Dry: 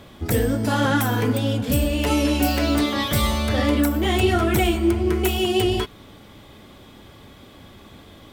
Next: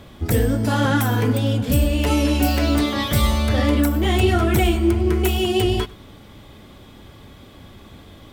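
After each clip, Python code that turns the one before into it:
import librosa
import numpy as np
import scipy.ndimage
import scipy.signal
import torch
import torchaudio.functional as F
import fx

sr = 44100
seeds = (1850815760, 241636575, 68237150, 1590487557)

y = fx.low_shelf(x, sr, hz=130.0, db=6.0)
y = y + 10.0 ** (-23.0 / 20.0) * np.pad(y, (int(99 * sr / 1000.0), 0))[:len(y)]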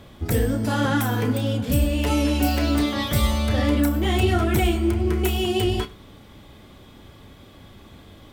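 y = fx.doubler(x, sr, ms=31.0, db=-12.5)
y = y * 10.0 ** (-3.0 / 20.0)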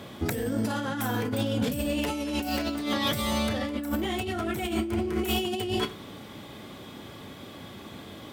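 y = scipy.signal.sosfilt(scipy.signal.butter(2, 140.0, 'highpass', fs=sr, output='sos'), x)
y = fx.over_compress(y, sr, threshold_db=-29.0, ratio=-1.0)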